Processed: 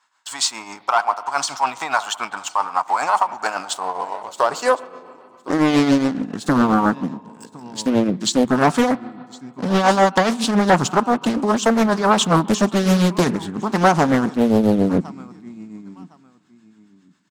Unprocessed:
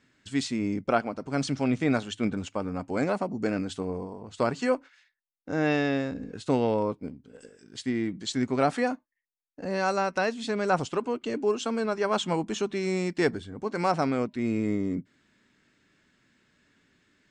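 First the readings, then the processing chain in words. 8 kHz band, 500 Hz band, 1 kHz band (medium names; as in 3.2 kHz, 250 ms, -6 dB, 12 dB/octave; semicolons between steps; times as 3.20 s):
+15.0 dB, +7.0 dB, +13.0 dB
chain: graphic EQ 125/250/500/1000/2000/8000 Hz +5/-5/-11/+9/-8/+5 dB; waveshaping leveller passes 2; spring tank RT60 2.4 s, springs 32/39 ms, chirp 45 ms, DRR 19 dB; tremolo triangle 7.3 Hz, depth 65%; feedback delay 1060 ms, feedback 19%, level -22 dB; high-pass sweep 880 Hz -> 210 Hz, 3.35–6.54 s; loudness maximiser +12 dB; loudspeaker Doppler distortion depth 0.9 ms; trim -4 dB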